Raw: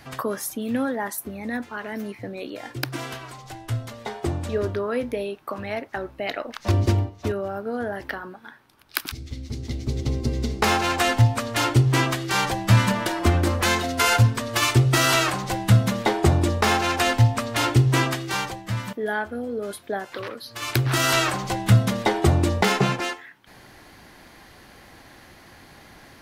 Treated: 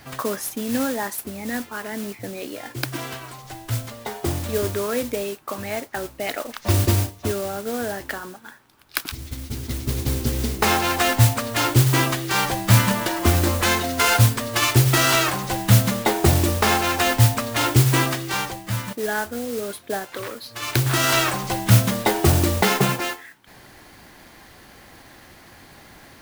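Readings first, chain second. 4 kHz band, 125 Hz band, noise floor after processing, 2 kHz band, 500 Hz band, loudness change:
+2.0 dB, +1.0 dB, -48 dBFS, +1.5 dB, +1.0 dB, +2.0 dB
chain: modulation noise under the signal 10 dB; trim +1 dB

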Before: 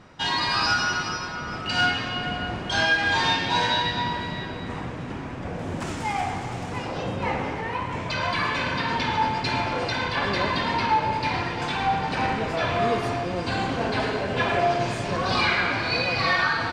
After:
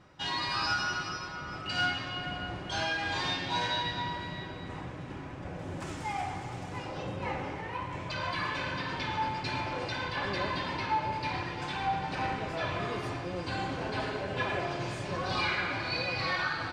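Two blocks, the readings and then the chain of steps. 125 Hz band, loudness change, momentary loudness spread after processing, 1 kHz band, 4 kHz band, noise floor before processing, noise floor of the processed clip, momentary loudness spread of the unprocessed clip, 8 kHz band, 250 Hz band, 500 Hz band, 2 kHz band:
-7.0 dB, -8.5 dB, 9 LU, -8.5 dB, -8.0 dB, -33 dBFS, -41 dBFS, 10 LU, -9.0 dB, -8.5 dB, -9.0 dB, -9.0 dB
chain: comb of notches 230 Hz; trim -7 dB

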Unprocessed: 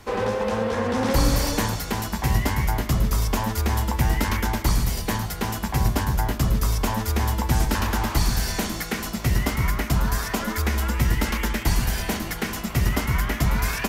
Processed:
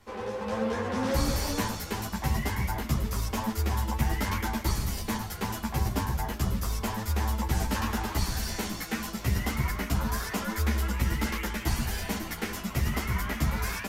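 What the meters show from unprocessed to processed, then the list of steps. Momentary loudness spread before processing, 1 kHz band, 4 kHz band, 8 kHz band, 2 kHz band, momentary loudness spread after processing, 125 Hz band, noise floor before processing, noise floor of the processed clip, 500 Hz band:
4 LU, -6.0 dB, -6.0 dB, -6.0 dB, -6.0 dB, 4 LU, -6.5 dB, -32 dBFS, -39 dBFS, -7.0 dB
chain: level rider gain up to 7 dB; three-phase chorus; trim -8.5 dB

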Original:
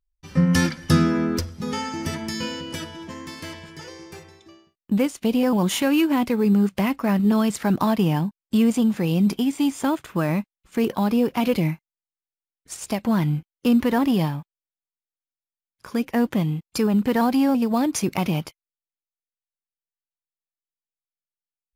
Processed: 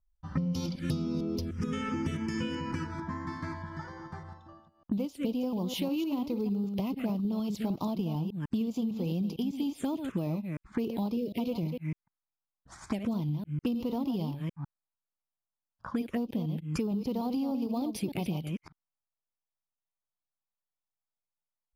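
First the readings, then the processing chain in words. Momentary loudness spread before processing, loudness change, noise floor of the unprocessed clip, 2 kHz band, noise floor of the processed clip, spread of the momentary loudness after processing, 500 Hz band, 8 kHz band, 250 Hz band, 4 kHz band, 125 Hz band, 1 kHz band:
16 LU, -11.0 dB, under -85 dBFS, -14.5 dB, under -85 dBFS, 8 LU, -11.5 dB, -16.5 dB, -10.5 dB, -12.0 dB, -9.0 dB, -13.0 dB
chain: chunks repeated in reverse 151 ms, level -8.5 dB; touch-sensitive phaser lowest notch 370 Hz, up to 1.7 kHz, full sweep at -17.5 dBFS; level-controlled noise filter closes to 1.5 kHz, open at -20.5 dBFS; dynamic bell 1.9 kHz, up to -7 dB, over -49 dBFS, Q 1.6; compression 12:1, threshold -32 dBFS, peak gain reduction 20 dB; time-frequency box 11.16–11.38 s, 700–1800 Hz -24 dB; trim +3.5 dB

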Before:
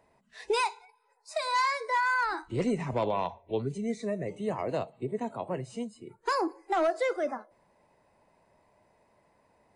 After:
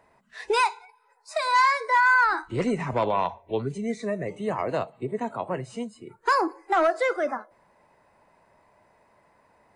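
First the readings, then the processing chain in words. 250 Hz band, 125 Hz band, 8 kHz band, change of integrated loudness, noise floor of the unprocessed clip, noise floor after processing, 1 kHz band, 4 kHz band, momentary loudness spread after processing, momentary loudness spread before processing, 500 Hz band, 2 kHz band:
+2.5 dB, +2.5 dB, +2.5 dB, +6.0 dB, -68 dBFS, -63 dBFS, +7.0 dB, +3.5 dB, 12 LU, 9 LU, +3.5 dB, +8.5 dB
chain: peaking EQ 1.4 kHz +7 dB 1.3 oct; trim +2.5 dB

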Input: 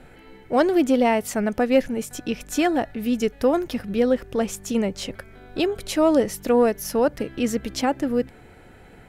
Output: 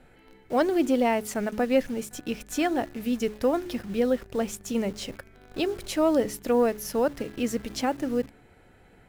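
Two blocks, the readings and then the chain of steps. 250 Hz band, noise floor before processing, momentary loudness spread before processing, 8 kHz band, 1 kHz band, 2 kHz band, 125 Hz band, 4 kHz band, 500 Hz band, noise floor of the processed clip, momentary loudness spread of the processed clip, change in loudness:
-4.5 dB, -48 dBFS, 10 LU, -4.0 dB, -4.5 dB, -4.5 dB, -5.0 dB, -4.0 dB, -4.5 dB, -56 dBFS, 10 LU, -4.5 dB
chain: de-hum 70.79 Hz, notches 6; in parallel at -5.5 dB: bit crusher 6-bit; on the sum: trim -8 dB

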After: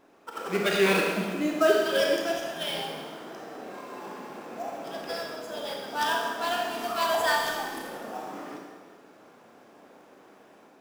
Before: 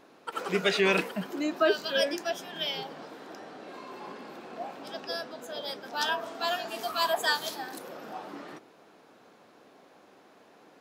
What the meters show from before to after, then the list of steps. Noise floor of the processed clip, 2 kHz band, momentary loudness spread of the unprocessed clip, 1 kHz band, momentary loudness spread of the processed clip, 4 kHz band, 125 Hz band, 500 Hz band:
-55 dBFS, +2.0 dB, 19 LU, +3.5 dB, 18 LU, -0.5 dB, +3.0 dB, +3.5 dB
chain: band-stop 4.2 kHz, Q 10; level rider gain up to 4.5 dB; in parallel at -5 dB: sample-rate reducer 6.7 kHz, jitter 20%; on the sum: Schroeder reverb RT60 1.4 s, combs from 27 ms, DRR 0 dB; trim -7.5 dB

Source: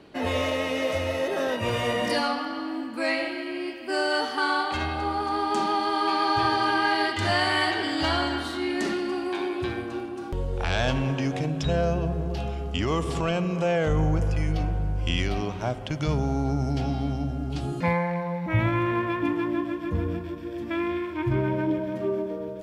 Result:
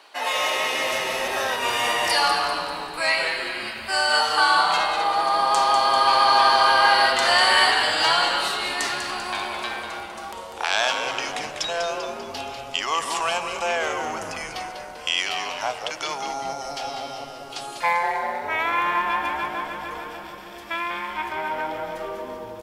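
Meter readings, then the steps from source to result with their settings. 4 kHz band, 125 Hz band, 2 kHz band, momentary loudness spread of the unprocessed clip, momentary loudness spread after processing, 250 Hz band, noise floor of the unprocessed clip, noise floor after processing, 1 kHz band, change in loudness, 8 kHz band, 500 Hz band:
+9.0 dB, -20.5 dB, +7.0 dB, 7 LU, 16 LU, -12.5 dB, -35 dBFS, -38 dBFS, +7.5 dB, +4.5 dB, +12.0 dB, -1.0 dB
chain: resonant high-pass 880 Hz, resonance Q 1.9; treble shelf 3 kHz +11.5 dB; frequency-shifting echo 196 ms, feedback 51%, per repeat -140 Hz, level -7.5 dB; trim +1 dB

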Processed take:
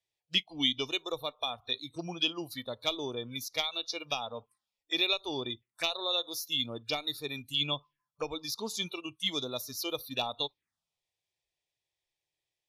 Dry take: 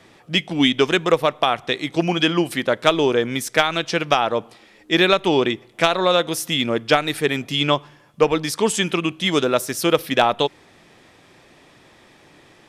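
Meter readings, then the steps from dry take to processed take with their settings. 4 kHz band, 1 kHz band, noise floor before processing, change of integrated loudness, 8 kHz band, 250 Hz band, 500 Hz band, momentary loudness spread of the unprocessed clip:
-7.5 dB, -19.0 dB, -52 dBFS, -13.5 dB, -13.0 dB, -18.5 dB, -19.5 dB, 6 LU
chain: spectral noise reduction 26 dB; amplifier tone stack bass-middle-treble 5-5-5; touch-sensitive phaser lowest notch 230 Hz, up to 1.6 kHz, full sweep at -35.5 dBFS; trim +2 dB

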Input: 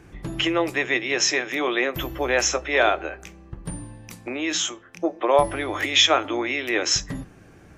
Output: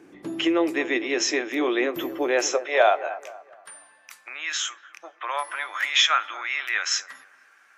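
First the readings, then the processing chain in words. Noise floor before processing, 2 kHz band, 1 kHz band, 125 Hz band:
-49 dBFS, -1.5 dB, -1.0 dB, under -15 dB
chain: high-pass sweep 290 Hz -> 1.4 kHz, 2.21–3.52 s; feedback echo behind a low-pass 235 ms, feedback 34%, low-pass 1.3 kHz, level -14 dB; trim -4 dB

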